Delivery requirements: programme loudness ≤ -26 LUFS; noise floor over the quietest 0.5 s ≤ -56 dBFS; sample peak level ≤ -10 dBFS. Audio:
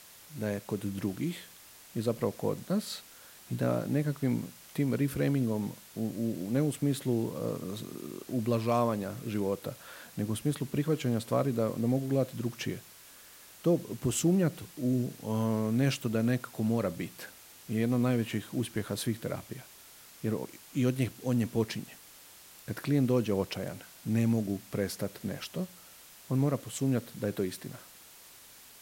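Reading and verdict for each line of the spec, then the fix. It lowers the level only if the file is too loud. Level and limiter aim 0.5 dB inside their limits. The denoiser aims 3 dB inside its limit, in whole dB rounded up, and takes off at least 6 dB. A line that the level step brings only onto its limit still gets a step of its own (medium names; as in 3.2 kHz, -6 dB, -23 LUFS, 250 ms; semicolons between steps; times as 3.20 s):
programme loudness -32.0 LUFS: pass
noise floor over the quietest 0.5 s -54 dBFS: fail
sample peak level -15.0 dBFS: pass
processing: noise reduction 6 dB, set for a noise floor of -54 dBFS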